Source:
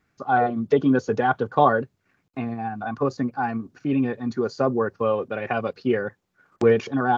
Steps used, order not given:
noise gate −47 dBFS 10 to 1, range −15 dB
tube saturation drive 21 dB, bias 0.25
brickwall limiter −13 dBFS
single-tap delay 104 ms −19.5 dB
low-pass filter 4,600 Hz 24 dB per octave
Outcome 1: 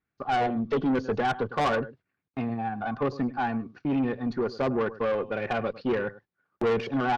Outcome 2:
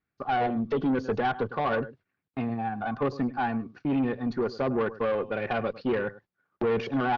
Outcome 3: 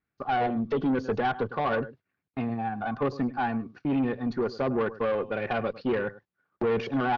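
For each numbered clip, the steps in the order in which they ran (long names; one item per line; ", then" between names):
low-pass filter, then noise gate, then single-tap delay, then tube saturation, then brickwall limiter
single-tap delay, then noise gate, then brickwall limiter, then tube saturation, then low-pass filter
single-tap delay, then brickwall limiter, then tube saturation, then noise gate, then low-pass filter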